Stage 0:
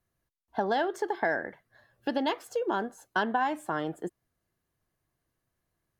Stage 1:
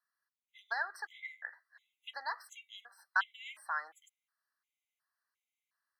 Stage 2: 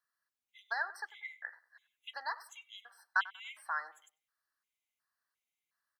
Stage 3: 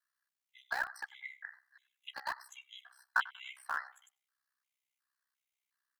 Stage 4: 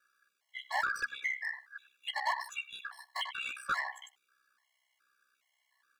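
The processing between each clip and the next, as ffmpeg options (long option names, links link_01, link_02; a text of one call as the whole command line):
ffmpeg -i in.wav -af "highpass=frequency=1200:width=0.5412,highpass=frequency=1200:width=1.3066,highshelf=frequency=3800:gain=-9,afftfilt=real='re*gt(sin(2*PI*1.4*pts/sr)*(1-2*mod(floor(b*sr/1024/2000),2)),0)':imag='im*gt(sin(2*PI*1.4*pts/sr)*(1-2*mod(floor(b*sr/1024/2000),2)),0)':win_size=1024:overlap=0.75,volume=3dB" out.wav
ffmpeg -i in.wav -filter_complex "[0:a]asplit=2[link_01][link_02];[link_02]adelay=95,lowpass=frequency=1900:poles=1,volume=-17dB,asplit=2[link_03][link_04];[link_04]adelay=95,lowpass=frequency=1900:poles=1,volume=0.31,asplit=2[link_05][link_06];[link_06]adelay=95,lowpass=frequency=1900:poles=1,volume=0.31[link_07];[link_01][link_03][link_05][link_07]amix=inputs=4:normalize=0" out.wav
ffmpeg -i in.wav -filter_complex "[0:a]highpass=410,aeval=exprs='val(0)*sin(2*PI*32*n/s)':channel_layout=same,acrossover=split=750|2000|6200[link_01][link_02][link_03][link_04];[link_01]acrusher=bits=7:mix=0:aa=0.000001[link_05];[link_05][link_02][link_03][link_04]amix=inputs=4:normalize=0,volume=2.5dB" out.wav
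ffmpeg -i in.wav -filter_complex "[0:a]bandreject=frequency=60:width_type=h:width=6,bandreject=frequency=120:width_type=h:width=6,bandreject=frequency=180:width_type=h:width=6,bandreject=frequency=240:width_type=h:width=6,asplit=2[link_01][link_02];[link_02]highpass=frequency=720:poles=1,volume=31dB,asoftclip=type=tanh:threshold=-16dB[link_03];[link_01][link_03]amix=inputs=2:normalize=0,lowpass=frequency=2400:poles=1,volume=-6dB,afftfilt=real='re*gt(sin(2*PI*1.2*pts/sr)*(1-2*mod(floor(b*sr/1024/560),2)),0)':imag='im*gt(sin(2*PI*1.2*pts/sr)*(1-2*mod(floor(b*sr/1024/560),2)),0)':win_size=1024:overlap=0.75,volume=-3.5dB" out.wav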